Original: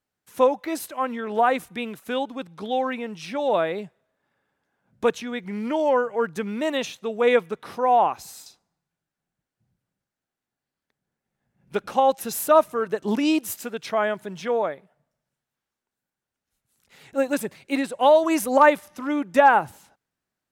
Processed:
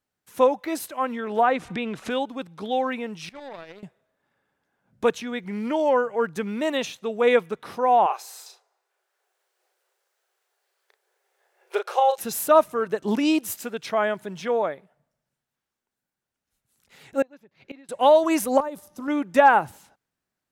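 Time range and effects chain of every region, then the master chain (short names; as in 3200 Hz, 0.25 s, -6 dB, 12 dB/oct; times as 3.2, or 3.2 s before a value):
1.43–2.1 air absorption 100 m + upward compressor, threshold -22 dBFS
3.29–3.83 power-law curve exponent 2 + compressor, threshold -34 dBFS
8.06–12.17 brick-wall FIR high-pass 360 Hz + doubler 35 ms -6 dB + three-band squash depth 40%
17.22–17.89 running mean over 5 samples + flipped gate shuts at -24 dBFS, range -25 dB
18.6–19.08 bell 2100 Hz -14.5 dB 1.6 oct + compressor 10:1, threshold -27 dBFS
whole clip: dry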